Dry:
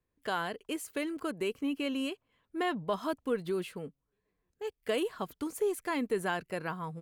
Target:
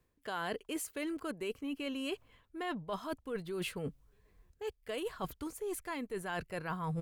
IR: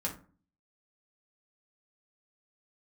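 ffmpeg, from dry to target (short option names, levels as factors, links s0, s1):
-af "areverse,acompressor=threshold=0.00631:ratio=16,areverse,asubboost=boost=5:cutoff=98,volume=3.16"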